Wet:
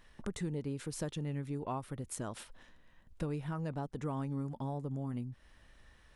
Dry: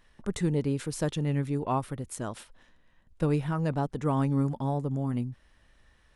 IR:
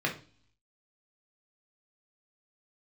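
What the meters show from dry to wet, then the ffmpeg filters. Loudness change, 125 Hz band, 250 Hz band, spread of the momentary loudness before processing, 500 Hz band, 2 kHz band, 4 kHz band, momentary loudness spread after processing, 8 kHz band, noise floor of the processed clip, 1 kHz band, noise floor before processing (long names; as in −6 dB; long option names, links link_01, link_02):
−9.5 dB, −9.5 dB, −9.5 dB, 9 LU, −9.5 dB, −8.0 dB, −7.0 dB, 6 LU, −4.5 dB, −63 dBFS, −9.5 dB, −63 dBFS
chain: -af "acompressor=threshold=-39dB:ratio=3,volume=1dB"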